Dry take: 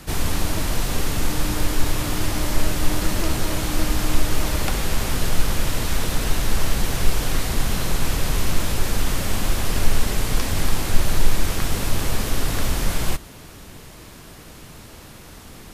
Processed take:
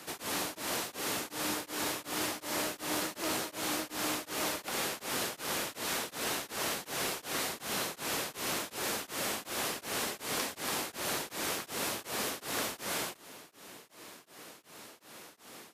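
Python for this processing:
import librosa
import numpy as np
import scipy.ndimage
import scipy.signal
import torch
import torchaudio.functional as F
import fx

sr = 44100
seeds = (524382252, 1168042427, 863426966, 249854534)

y = scipy.signal.sosfilt(scipy.signal.butter(2, 330.0, 'highpass', fs=sr, output='sos'), x)
y = np.clip(10.0 ** (19.5 / 20.0) * y, -1.0, 1.0) / 10.0 ** (19.5 / 20.0)
y = y * np.abs(np.cos(np.pi * 2.7 * np.arange(len(y)) / sr))
y = F.gain(torch.from_numpy(y), -4.0).numpy()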